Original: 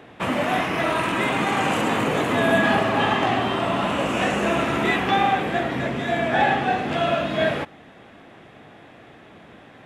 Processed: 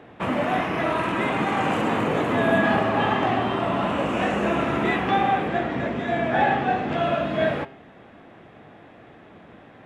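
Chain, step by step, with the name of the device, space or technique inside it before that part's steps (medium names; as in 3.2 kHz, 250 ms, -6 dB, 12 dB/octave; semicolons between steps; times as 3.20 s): 5.48–7.04 s: low-pass 8.4 kHz 24 dB/octave; through cloth (treble shelf 3.3 kHz -11.5 dB); de-hum 134 Hz, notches 37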